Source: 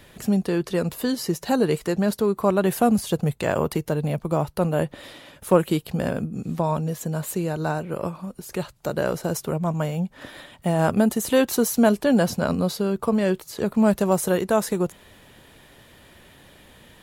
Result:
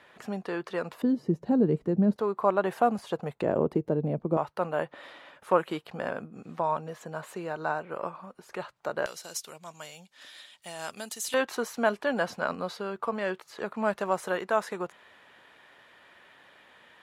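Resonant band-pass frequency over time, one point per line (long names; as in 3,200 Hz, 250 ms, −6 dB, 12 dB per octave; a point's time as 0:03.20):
resonant band-pass, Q 0.95
1,200 Hz
from 0:01.02 220 Hz
from 0:02.16 990 Hz
from 0:03.42 340 Hz
from 0:04.37 1,200 Hz
from 0:09.06 5,100 Hz
from 0:11.34 1,400 Hz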